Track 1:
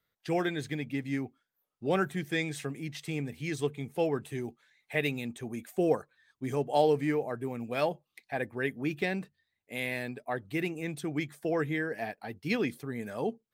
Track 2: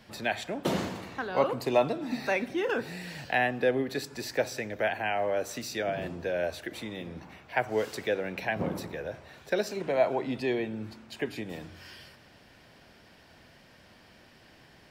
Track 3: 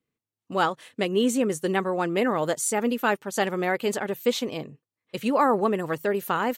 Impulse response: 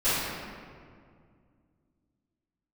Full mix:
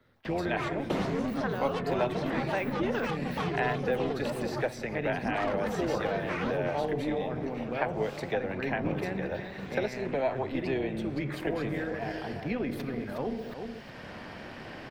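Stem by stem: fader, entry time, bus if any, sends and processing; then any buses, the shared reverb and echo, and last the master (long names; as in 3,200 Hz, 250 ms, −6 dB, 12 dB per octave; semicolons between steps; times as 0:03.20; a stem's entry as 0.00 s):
−3.5 dB, 0.00 s, send −23 dB, echo send −11.5 dB, parametric band 8,700 Hz −15 dB 2 octaves; level that may fall only so fast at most 53 dB per second
0.0 dB, 0.25 s, no send, no echo send, no processing
+1.0 dB, 0.00 s, no send, echo send −8.5 dB, partials spread apart or drawn together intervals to 130%; parametric band 6,900 Hz −12.5 dB 0.29 octaves; soft clipping −29 dBFS, distortion −9 dB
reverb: on, RT60 2.1 s, pre-delay 3 ms
echo: single-tap delay 364 ms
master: amplitude modulation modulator 270 Hz, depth 40%; high-shelf EQ 5,500 Hz −12 dB; multiband upward and downward compressor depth 70%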